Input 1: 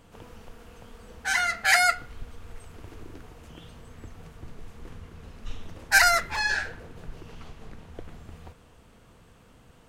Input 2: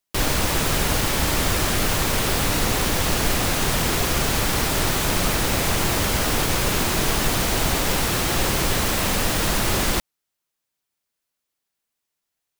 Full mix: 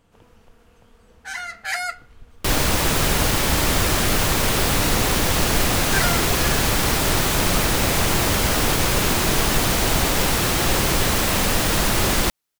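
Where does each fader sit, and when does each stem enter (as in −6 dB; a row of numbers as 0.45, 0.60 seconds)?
−6.0, +2.0 decibels; 0.00, 2.30 seconds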